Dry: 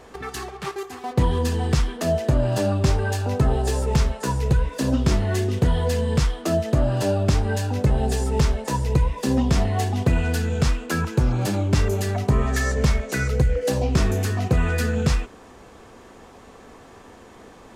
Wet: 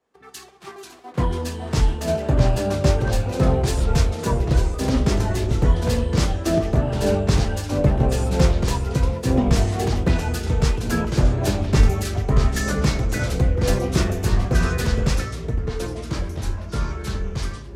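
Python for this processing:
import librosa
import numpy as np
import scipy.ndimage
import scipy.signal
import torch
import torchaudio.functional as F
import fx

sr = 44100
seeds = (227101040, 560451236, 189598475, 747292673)

y = fx.echo_pitch(x, sr, ms=447, semitones=-2, count=3, db_per_echo=-3.0)
y = fx.band_widen(y, sr, depth_pct=100)
y = y * 10.0 ** (-1.0 / 20.0)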